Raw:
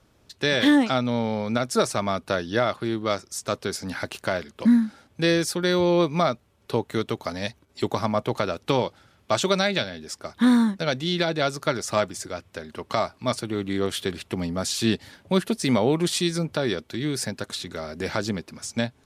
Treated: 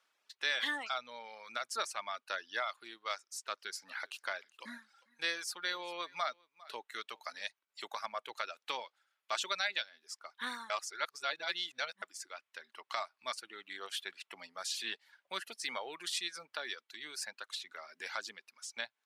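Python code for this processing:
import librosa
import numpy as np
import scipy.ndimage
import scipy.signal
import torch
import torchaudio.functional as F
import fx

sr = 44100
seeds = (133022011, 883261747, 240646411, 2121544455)

y = fx.echo_single(x, sr, ms=401, db=-18.0, at=(3.56, 7.46), fade=0.02)
y = fx.edit(y, sr, fx.reverse_span(start_s=10.7, length_s=1.32), tone=tone)
y = fx.dereverb_blind(y, sr, rt60_s=1.1)
y = scipy.signal.sosfilt(scipy.signal.butter(2, 1400.0, 'highpass', fs=sr, output='sos'), y)
y = fx.high_shelf(y, sr, hz=4200.0, db=-9.0)
y = y * librosa.db_to_amplitude(-4.0)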